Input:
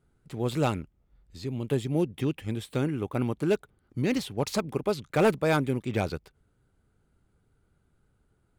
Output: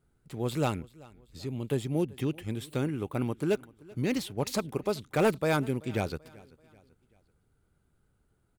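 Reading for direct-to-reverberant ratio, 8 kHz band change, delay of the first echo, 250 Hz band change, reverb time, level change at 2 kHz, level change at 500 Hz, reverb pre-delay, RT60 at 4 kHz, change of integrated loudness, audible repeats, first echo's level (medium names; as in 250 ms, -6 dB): no reverb, 0.0 dB, 385 ms, -2.5 dB, no reverb, -2.5 dB, -2.5 dB, no reverb, no reverb, -2.5 dB, 2, -23.0 dB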